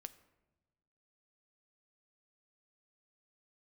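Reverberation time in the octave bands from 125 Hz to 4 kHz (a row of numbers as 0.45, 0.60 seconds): 1.6, 1.5, 1.2, 1.1, 0.85, 0.60 seconds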